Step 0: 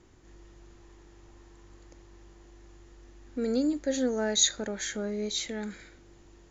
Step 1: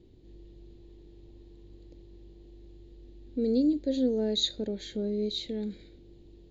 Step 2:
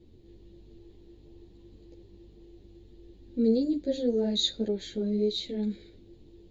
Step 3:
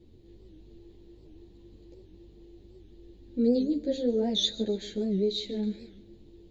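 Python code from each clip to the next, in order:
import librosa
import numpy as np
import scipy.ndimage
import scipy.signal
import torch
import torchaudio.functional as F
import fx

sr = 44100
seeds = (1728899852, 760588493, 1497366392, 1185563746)

y1 = fx.curve_eq(x, sr, hz=(440.0, 1300.0, 4100.0, 5800.0), db=(0, -25, -2, -20))
y1 = y1 * 10.0 ** (2.5 / 20.0)
y2 = fx.ensemble(y1, sr)
y2 = y2 * 10.0 ** (4.0 / 20.0)
y3 = fx.echo_feedback(y2, sr, ms=146, feedback_pct=44, wet_db=-18)
y3 = fx.record_warp(y3, sr, rpm=78.0, depth_cents=160.0)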